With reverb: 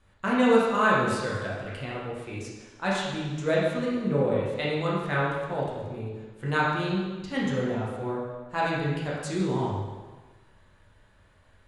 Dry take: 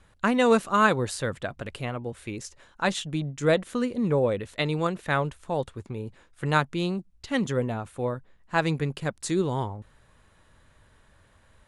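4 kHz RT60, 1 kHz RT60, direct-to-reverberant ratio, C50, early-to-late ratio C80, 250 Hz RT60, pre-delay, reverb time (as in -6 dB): 1.2 s, 1.3 s, -6.0 dB, -0.5 dB, 2.0 dB, 1.3 s, 7 ms, 1.3 s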